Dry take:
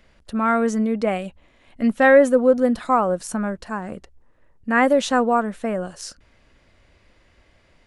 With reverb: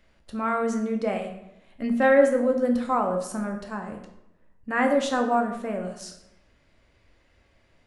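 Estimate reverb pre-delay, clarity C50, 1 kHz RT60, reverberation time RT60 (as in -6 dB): 10 ms, 7.0 dB, 0.85 s, 0.90 s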